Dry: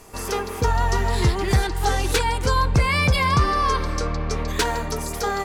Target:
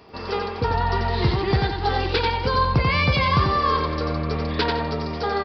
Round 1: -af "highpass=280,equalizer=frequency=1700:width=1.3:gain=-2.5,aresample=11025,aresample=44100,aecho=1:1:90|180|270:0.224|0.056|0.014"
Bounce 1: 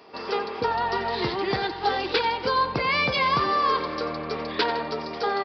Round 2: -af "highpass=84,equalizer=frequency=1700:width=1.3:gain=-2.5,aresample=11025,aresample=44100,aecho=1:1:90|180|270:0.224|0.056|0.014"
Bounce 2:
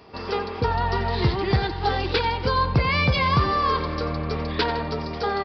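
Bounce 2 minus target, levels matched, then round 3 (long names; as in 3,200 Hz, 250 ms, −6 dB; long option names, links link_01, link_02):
echo-to-direct −8.5 dB
-af "highpass=84,equalizer=frequency=1700:width=1.3:gain=-2.5,aresample=11025,aresample=44100,aecho=1:1:90|180|270:0.596|0.149|0.0372"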